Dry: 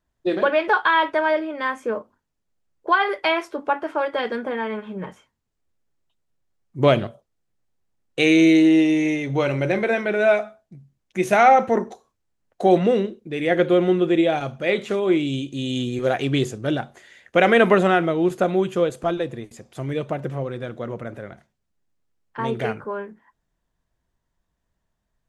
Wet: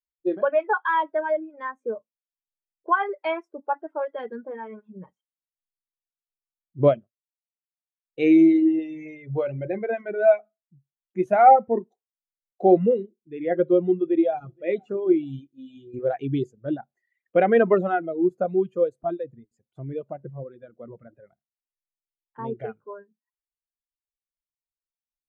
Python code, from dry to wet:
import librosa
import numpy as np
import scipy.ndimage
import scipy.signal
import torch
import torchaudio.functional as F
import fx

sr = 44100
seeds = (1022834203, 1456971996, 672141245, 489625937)

y = fx.echo_throw(x, sr, start_s=13.96, length_s=0.7, ms=470, feedback_pct=40, wet_db=-15.5)
y = fx.comb_fb(y, sr, f0_hz=53.0, decay_s=0.23, harmonics='all', damping=0.0, mix_pct=90, at=(15.47, 15.94))
y = fx.edit(y, sr, fx.fade_down_up(start_s=6.88, length_s=1.36, db=-22.0, fade_s=0.22), tone=tone)
y = fx.dereverb_blind(y, sr, rt60_s=1.4)
y = fx.high_shelf(y, sr, hz=2100.0, db=-6.5)
y = fx.spectral_expand(y, sr, expansion=1.5)